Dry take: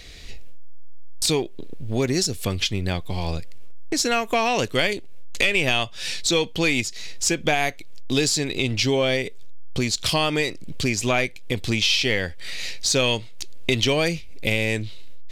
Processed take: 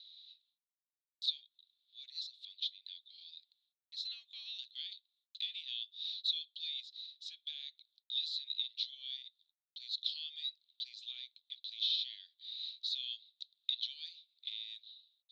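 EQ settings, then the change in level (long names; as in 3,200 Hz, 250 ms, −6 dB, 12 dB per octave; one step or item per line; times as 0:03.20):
flat-topped band-pass 3,800 Hz, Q 6.1
−5.0 dB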